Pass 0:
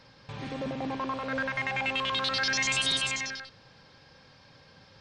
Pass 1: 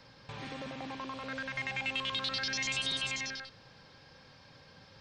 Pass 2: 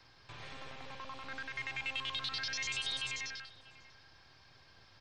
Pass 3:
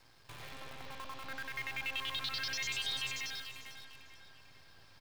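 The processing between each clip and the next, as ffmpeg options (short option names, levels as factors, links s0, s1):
-filter_complex "[0:a]acrossover=split=340|840|2200|6400[s0][s1][s2][s3][s4];[s0]acompressor=threshold=0.00562:ratio=4[s5];[s1]acompressor=threshold=0.00355:ratio=4[s6];[s2]acompressor=threshold=0.00631:ratio=4[s7];[s3]acompressor=threshold=0.0282:ratio=4[s8];[s4]acompressor=threshold=0.002:ratio=4[s9];[s5][s6][s7][s8][s9]amix=inputs=5:normalize=0,volume=0.891"
-filter_complex "[0:a]acrossover=split=140|730|1500[s0][s1][s2][s3];[s1]aeval=exprs='abs(val(0))':c=same[s4];[s0][s4][s2][s3]amix=inputs=4:normalize=0,asplit=2[s5][s6];[s6]adelay=641.4,volume=0.141,highshelf=f=4000:g=-14.4[s7];[s5][s7]amix=inputs=2:normalize=0,volume=0.668"
-filter_complex "[0:a]asplit=2[s0][s1];[s1]adelay=447,lowpass=f=4500:p=1,volume=0.355,asplit=2[s2][s3];[s3]adelay=447,lowpass=f=4500:p=1,volume=0.48,asplit=2[s4][s5];[s5]adelay=447,lowpass=f=4500:p=1,volume=0.48,asplit=2[s6][s7];[s7]adelay=447,lowpass=f=4500:p=1,volume=0.48,asplit=2[s8][s9];[s9]adelay=447,lowpass=f=4500:p=1,volume=0.48[s10];[s0][s2][s4][s6][s8][s10]amix=inputs=6:normalize=0,acrusher=bits=9:dc=4:mix=0:aa=0.000001"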